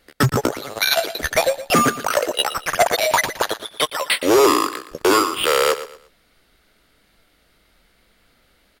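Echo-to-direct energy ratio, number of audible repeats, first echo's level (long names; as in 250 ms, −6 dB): −13.0 dB, 3, −13.5 dB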